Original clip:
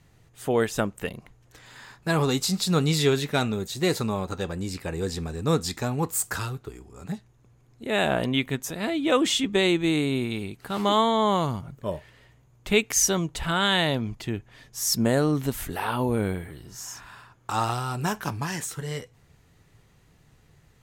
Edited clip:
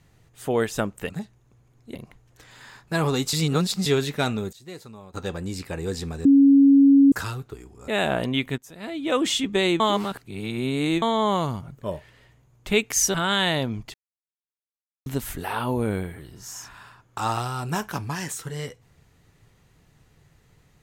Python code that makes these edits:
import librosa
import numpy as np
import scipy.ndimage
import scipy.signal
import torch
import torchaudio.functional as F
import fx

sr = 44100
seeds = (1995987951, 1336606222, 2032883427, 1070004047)

y = fx.edit(x, sr, fx.reverse_span(start_s=2.48, length_s=0.53),
    fx.fade_down_up(start_s=3.53, length_s=0.91, db=-16.0, fade_s=0.15, curve='log'),
    fx.bleep(start_s=5.4, length_s=0.87, hz=277.0, db=-10.5),
    fx.move(start_s=7.03, length_s=0.85, to_s=1.1),
    fx.fade_in_from(start_s=8.58, length_s=0.69, floor_db=-20.0),
    fx.reverse_span(start_s=9.8, length_s=1.22),
    fx.cut(start_s=13.14, length_s=0.32),
    fx.silence(start_s=14.26, length_s=1.12), tone=tone)